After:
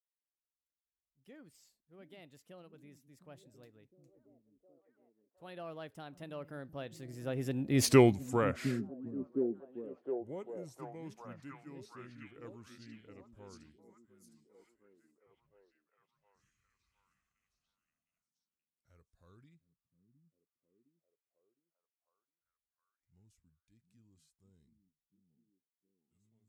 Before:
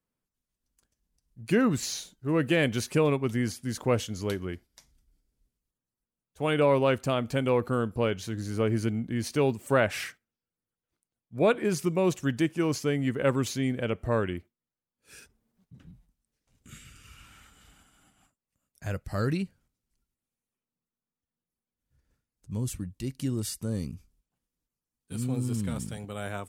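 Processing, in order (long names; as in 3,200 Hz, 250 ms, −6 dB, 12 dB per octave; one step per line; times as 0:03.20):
fade-out on the ending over 2.72 s
source passing by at 0:07.88, 53 m/s, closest 4.3 metres
on a send: echo through a band-pass that steps 711 ms, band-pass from 190 Hz, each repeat 0.7 octaves, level −6 dB
on the sum: gain on a spectral selection 0:10.12–0:10.79, 1,000–5,300 Hz −8 dB
level +7.5 dB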